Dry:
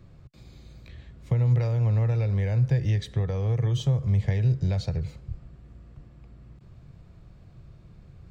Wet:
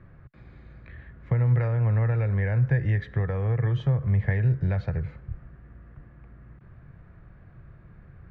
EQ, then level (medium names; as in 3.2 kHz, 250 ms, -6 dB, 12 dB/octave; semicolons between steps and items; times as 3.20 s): resonant low-pass 1.7 kHz, resonance Q 3.3; 0.0 dB